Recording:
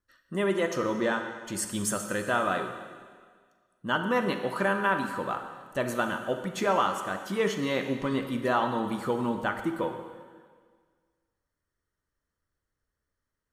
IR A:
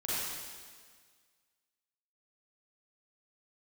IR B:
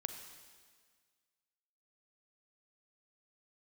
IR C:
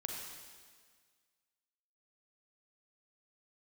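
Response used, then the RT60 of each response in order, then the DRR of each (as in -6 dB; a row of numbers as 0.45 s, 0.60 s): B; 1.7 s, 1.7 s, 1.7 s; -9.5 dB, 6.5 dB, 0.0 dB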